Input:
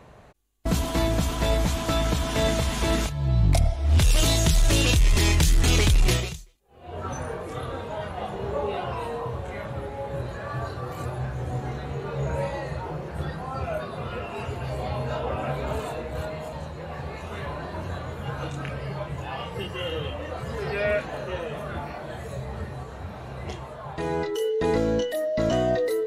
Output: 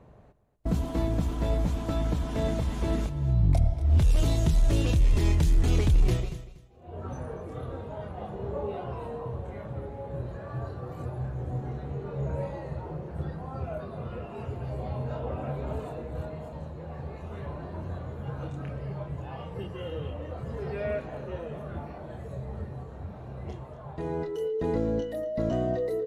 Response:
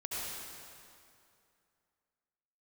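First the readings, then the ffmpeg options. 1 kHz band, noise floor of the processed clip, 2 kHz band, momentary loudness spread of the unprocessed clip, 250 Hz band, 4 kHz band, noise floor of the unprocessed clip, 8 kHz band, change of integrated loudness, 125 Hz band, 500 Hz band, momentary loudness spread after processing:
−8.0 dB, −43 dBFS, −13.0 dB, 14 LU, −3.0 dB, −15.0 dB, −39 dBFS, −15.5 dB, −4.0 dB, −2.0 dB, −5.5 dB, 15 LU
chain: -af "tiltshelf=frequency=970:gain=7,aecho=1:1:238|476:0.178|0.0391,volume=-9dB"

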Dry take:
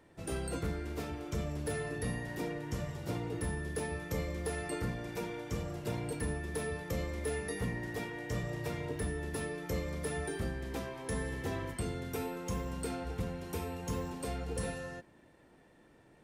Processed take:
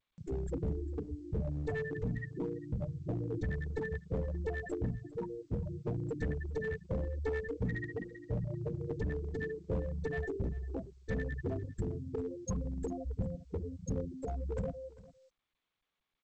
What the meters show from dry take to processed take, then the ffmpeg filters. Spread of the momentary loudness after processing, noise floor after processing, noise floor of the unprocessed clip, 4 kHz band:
4 LU, below −85 dBFS, −62 dBFS, below −15 dB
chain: -filter_complex "[0:a]afftfilt=real='re*gte(hypot(re,im),0.0562)':imag='im*gte(hypot(re,im),0.0562)':win_size=1024:overlap=0.75,adynamicequalizer=threshold=0.00112:dfrequency=220:dqfactor=6.7:tfrequency=220:tqfactor=6.7:attack=5:release=100:ratio=0.375:range=3:mode=cutabove:tftype=bell,acompressor=mode=upward:threshold=-48dB:ratio=2.5,crystalizer=i=3.5:c=0,aeval=exprs='clip(val(0),-1,0.0178)':channel_layout=same,asplit=2[link_01][link_02];[link_02]aecho=0:1:400:0.106[link_03];[link_01][link_03]amix=inputs=2:normalize=0,volume=3dB" -ar 16000 -c:a g722

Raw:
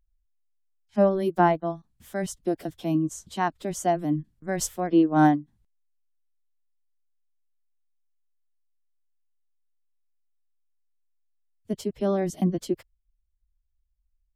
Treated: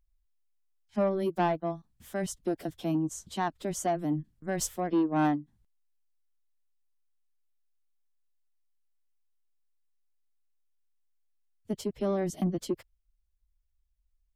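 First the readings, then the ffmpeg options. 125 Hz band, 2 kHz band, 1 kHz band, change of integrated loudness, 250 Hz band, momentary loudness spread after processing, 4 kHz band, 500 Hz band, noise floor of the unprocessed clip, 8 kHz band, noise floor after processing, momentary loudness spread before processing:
−5.0 dB, −6.0 dB, −6.5 dB, −5.5 dB, −5.5 dB, 9 LU, −2.5 dB, −5.5 dB, −73 dBFS, −2.5 dB, −74 dBFS, 11 LU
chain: -filter_complex "[0:a]asplit=2[link_01][link_02];[link_02]acompressor=threshold=-27dB:ratio=6,volume=-2.5dB[link_03];[link_01][link_03]amix=inputs=2:normalize=0,asoftclip=type=tanh:threshold=-14dB,volume=-6dB"

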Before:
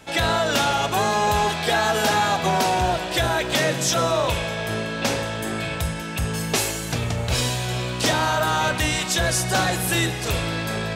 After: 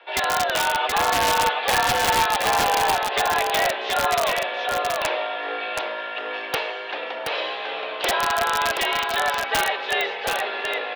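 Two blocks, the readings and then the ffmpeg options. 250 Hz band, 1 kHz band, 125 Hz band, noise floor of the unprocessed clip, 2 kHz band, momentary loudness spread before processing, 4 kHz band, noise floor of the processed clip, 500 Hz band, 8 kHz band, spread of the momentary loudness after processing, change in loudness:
−11.0 dB, +2.0 dB, −17.0 dB, −29 dBFS, +1.5 dB, 6 LU, −0.5 dB, −32 dBFS, −1.5 dB, −4.5 dB, 9 LU, −0.5 dB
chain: -filter_complex "[0:a]highpass=frequency=370:width_type=q:width=0.5412,highpass=frequency=370:width_type=q:width=1.307,lowpass=frequency=3500:width_type=q:width=0.5176,lowpass=frequency=3500:width_type=q:width=0.7071,lowpass=frequency=3500:width_type=q:width=1.932,afreqshift=68,aeval=exprs='(mod(4.73*val(0)+1,2)-1)/4.73':channel_layout=same,asplit=2[link_01][link_02];[link_02]aecho=0:1:725:0.631[link_03];[link_01][link_03]amix=inputs=2:normalize=0"

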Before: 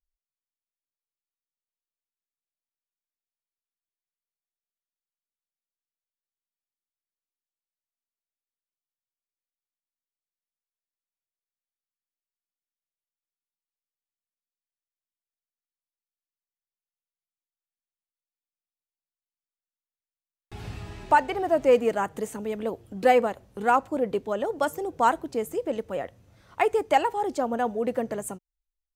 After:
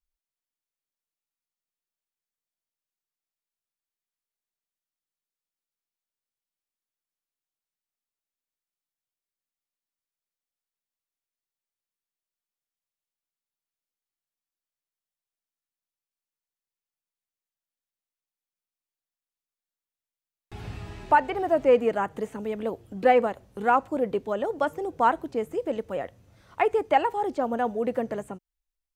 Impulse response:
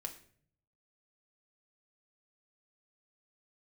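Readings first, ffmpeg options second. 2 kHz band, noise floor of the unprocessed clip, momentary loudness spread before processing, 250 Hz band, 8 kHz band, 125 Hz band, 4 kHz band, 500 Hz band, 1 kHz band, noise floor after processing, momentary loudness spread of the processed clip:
−0.5 dB, below −85 dBFS, 17 LU, 0.0 dB, below −10 dB, 0.0 dB, −3.0 dB, 0.0 dB, 0.0 dB, below −85 dBFS, 18 LU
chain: -filter_complex "[0:a]acrossover=split=3500[link_01][link_02];[link_02]acompressor=threshold=-56dB:ratio=4:attack=1:release=60[link_03];[link_01][link_03]amix=inputs=2:normalize=0"

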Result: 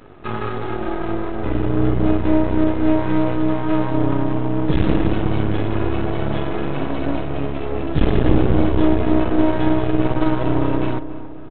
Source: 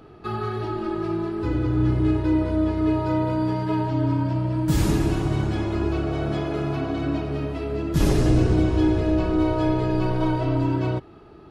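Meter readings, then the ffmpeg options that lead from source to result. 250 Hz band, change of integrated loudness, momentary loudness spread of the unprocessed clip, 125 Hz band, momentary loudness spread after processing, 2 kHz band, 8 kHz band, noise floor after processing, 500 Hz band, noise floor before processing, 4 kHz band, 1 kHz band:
+3.5 dB, +3.0 dB, 7 LU, +1.0 dB, 8 LU, +5.0 dB, below −35 dB, −27 dBFS, +4.0 dB, −46 dBFS, +2.0 dB, +4.0 dB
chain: -filter_complex "[0:a]equalizer=frequency=240:width_type=o:width=0.3:gain=4,aresample=8000,aeval=exprs='max(val(0),0)':channel_layout=same,aresample=44100,asplit=2[link_01][link_02];[link_02]adelay=277,lowpass=frequency=1400:poles=1,volume=-12dB,asplit=2[link_03][link_04];[link_04]adelay=277,lowpass=frequency=1400:poles=1,volume=0.54,asplit=2[link_05][link_06];[link_06]adelay=277,lowpass=frequency=1400:poles=1,volume=0.54,asplit=2[link_07][link_08];[link_08]adelay=277,lowpass=frequency=1400:poles=1,volume=0.54,asplit=2[link_09][link_10];[link_10]adelay=277,lowpass=frequency=1400:poles=1,volume=0.54,asplit=2[link_11][link_12];[link_12]adelay=277,lowpass=frequency=1400:poles=1,volume=0.54[link_13];[link_01][link_03][link_05][link_07][link_09][link_11][link_13]amix=inputs=7:normalize=0,volume=6.5dB"

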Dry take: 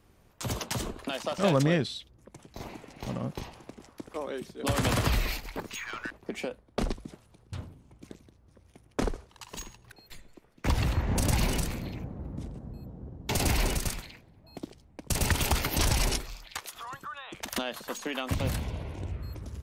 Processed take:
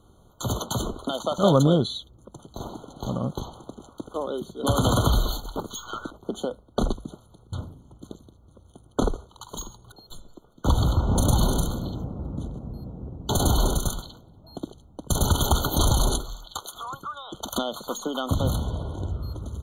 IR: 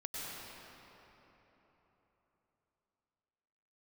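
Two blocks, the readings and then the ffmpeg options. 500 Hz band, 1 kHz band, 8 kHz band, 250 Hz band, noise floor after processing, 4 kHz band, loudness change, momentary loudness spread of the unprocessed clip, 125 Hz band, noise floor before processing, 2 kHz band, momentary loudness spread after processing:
+6.0 dB, +6.0 dB, +3.5 dB, +6.0 dB, −56 dBFS, +3.5 dB, +5.0 dB, 19 LU, +6.0 dB, −61 dBFS, −7.0 dB, 17 LU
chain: -af "afftfilt=real='re*eq(mod(floor(b*sr/1024/1500),2),0)':imag='im*eq(mod(floor(b*sr/1024/1500),2),0)':win_size=1024:overlap=0.75,volume=6dB"

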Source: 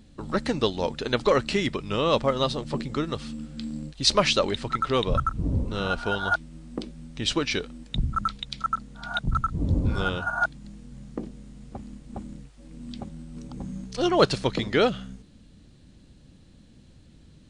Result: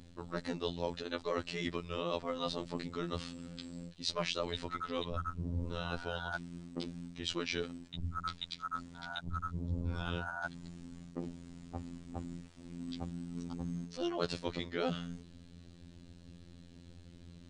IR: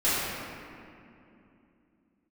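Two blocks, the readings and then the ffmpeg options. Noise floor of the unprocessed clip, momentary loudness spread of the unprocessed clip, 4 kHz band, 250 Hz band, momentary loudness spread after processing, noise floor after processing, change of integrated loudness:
−53 dBFS, 18 LU, −12.0 dB, −10.5 dB, 19 LU, −56 dBFS, −13.5 dB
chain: -af "lowpass=8500,areverse,acompressor=threshold=-34dB:ratio=4,areverse,afftfilt=real='hypot(re,im)*cos(PI*b)':imag='0':win_size=2048:overlap=0.75,volume=2dB"

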